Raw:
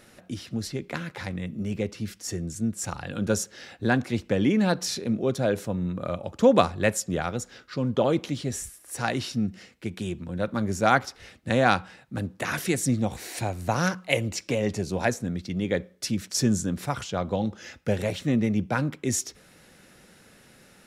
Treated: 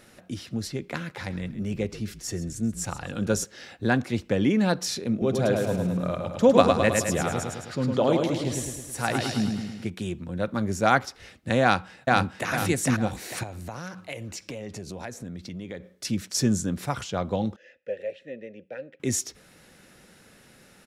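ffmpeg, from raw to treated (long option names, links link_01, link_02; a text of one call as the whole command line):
ffmpeg -i in.wav -filter_complex "[0:a]asplit=3[link_01][link_02][link_03];[link_01]afade=type=out:start_time=1.28:duration=0.02[link_04];[link_02]asplit=4[link_05][link_06][link_07][link_08];[link_06]adelay=132,afreqshift=-51,volume=-15dB[link_09];[link_07]adelay=264,afreqshift=-102,volume=-25.2dB[link_10];[link_08]adelay=396,afreqshift=-153,volume=-35.3dB[link_11];[link_05][link_09][link_10][link_11]amix=inputs=4:normalize=0,afade=type=in:start_time=1.28:duration=0.02,afade=type=out:start_time=3.43:duration=0.02[link_12];[link_03]afade=type=in:start_time=3.43:duration=0.02[link_13];[link_04][link_12][link_13]amix=inputs=3:normalize=0,asettb=1/sr,asplit=3[link_14][link_15][link_16];[link_14]atrim=end=5.114[link_17];[link_15]atrim=start=5.11:end=9.9,asetpts=PTS-STARTPTS,afade=type=in:duration=0.004:curve=qsin,afade=type=out:start_time=4.786:duration=0.004:curve=qsin,aecho=1:1:106|212|318|424|530|636|742|848:0.631|0.36|0.205|0.117|0.0666|0.038|0.0216|0.0123,atrim=end_sample=211239[link_18];[link_16]atrim=start=9.896[link_19];[link_17][link_18]acrossfade=duration=0.004:curve1=hsin:curve2=qsin[link_20];[link_20][link_19]acrossfade=duration=0.004:curve1=qsin:curve2=hsin,asplit=2[link_21][link_22];[link_22]afade=type=in:start_time=11.62:duration=0.01,afade=type=out:start_time=12.51:duration=0.01,aecho=0:1:450|900|1350|1800|2250:0.944061|0.330421|0.115647|0.0404766|0.0141668[link_23];[link_21][link_23]amix=inputs=2:normalize=0,asettb=1/sr,asplit=3[link_24][link_25][link_26];[link_24]atrim=end=13.434[link_27];[link_25]atrim=start=13.43:end=16.05,asetpts=PTS-STARTPTS,afade=type=in:duration=0.004:curve=qsin,afade=type=out:start_time=2.616:duration=0.004:curve=qsin,acompressor=threshold=-34dB:ratio=4:attack=3.2:release=140:knee=1:detection=peak[link_28];[link_26]atrim=start=16.046[link_29];[link_27][link_28]acrossfade=duration=0.004:curve1=hsin:curve2=qsin[link_30];[link_30][link_29]acrossfade=duration=0.004:curve1=qsin:curve2=hsin,asettb=1/sr,asplit=3[link_31][link_32][link_33];[link_31]atrim=end=17.564[link_34];[link_32]atrim=start=17.56:end=19,asetpts=PTS-STARTPTS,afade=type=in:duration=0.004:curve=qsin,afade=type=out:start_time=1.436:duration=0.004:curve=qsin,asplit=3[link_35][link_36][link_37];[link_35]bandpass=frequency=530:width_type=q:width=8,volume=0dB[link_38];[link_36]bandpass=frequency=1840:width_type=q:width=8,volume=-6dB[link_39];[link_37]bandpass=frequency=2480:width_type=q:width=8,volume=-9dB[link_40];[link_38][link_39][link_40]amix=inputs=3:normalize=0[link_41];[link_33]atrim=start=18.996[link_42];[link_34][link_41]acrossfade=duration=0.004:curve1=hsin:curve2=qsin[link_43];[link_43][link_42]acrossfade=duration=0.004:curve1=qsin:curve2=hsin" out.wav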